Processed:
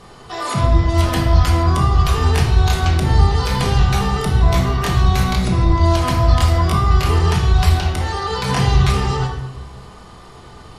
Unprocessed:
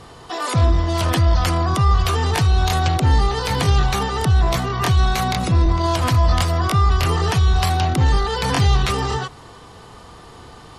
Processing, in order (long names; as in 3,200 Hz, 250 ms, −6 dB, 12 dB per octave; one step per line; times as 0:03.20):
0:07.80–0:08.30: high-pass filter 410 Hz 12 dB per octave
rectangular room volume 400 cubic metres, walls mixed, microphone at 1.3 metres
level −2.5 dB